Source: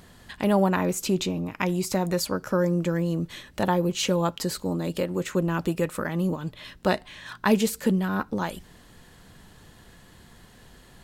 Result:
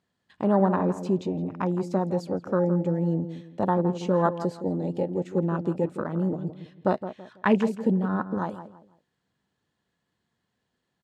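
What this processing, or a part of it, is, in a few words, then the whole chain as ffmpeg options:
over-cleaned archive recording: -filter_complex "[0:a]agate=range=0.355:threshold=0.00562:ratio=16:detection=peak,asettb=1/sr,asplit=3[s0][s1][s2];[s0]atrim=end=4.134[s3];[s1]atrim=start=4.13:end=4.68,asetpts=PTS-STARTPTS,afade=t=in:d=0.004:c=qsin,afade=t=out:st=0.546:d=0.004:c=qsin,equalizer=f=790:w=0.82:g=4.5[s4];[s2]atrim=start=4.676[s5];[s3][s4]acrossfade=d=0.004:c1=hsin:c2=qsin[s6];[s6][s5]acrossfade=d=0.004:c1=qsin:c2=hsin,highpass=110,lowpass=7100,afwtdn=0.0398,asplit=2[s7][s8];[s8]adelay=165,lowpass=f=1400:p=1,volume=0.299,asplit=2[s9][s10];[s10]adelay=165,lowpass=f=1400:p=1,volume=0.32,asplit=2[s11][s12];[s12]adelay=165,lowpass=f=1400:p=1,volume=0.32[s13];[s7][s9][s11][s13]amix=inputs=4:normalize=0"

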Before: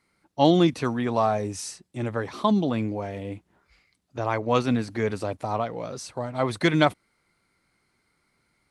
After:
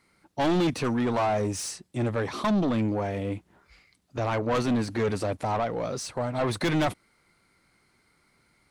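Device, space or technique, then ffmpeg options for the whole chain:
saturation between pre-emphasis and de-emphasis: -af "highshelf=f=3100:g=10,asoftclip=type=tanh:threshold=0.0562,highshelf=f=3100:g=-10,volume=1.68"

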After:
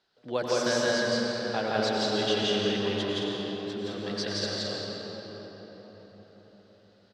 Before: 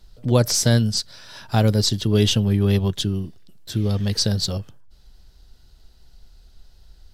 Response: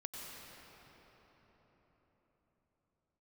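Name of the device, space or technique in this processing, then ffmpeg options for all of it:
station announcement: -filter_complex "[0:a]highpass=390,lowpass=3900,equalizer=f=1600:t=o:w=0.29:g=5,aecho=1:1:169.1|215.7:1|0.562[s0];[1:a]atrim=start_sample=2205[s1];[s0][s1]afir=irnorm=-1:irlink=0,volume=0.708"

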